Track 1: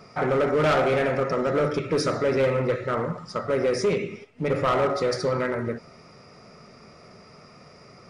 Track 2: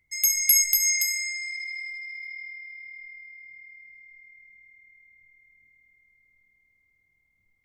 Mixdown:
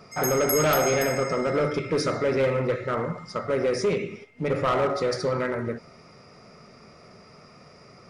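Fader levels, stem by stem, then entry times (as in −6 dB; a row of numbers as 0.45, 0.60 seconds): −1.0, −9.0 decibels; 0.00, 0.00 seconds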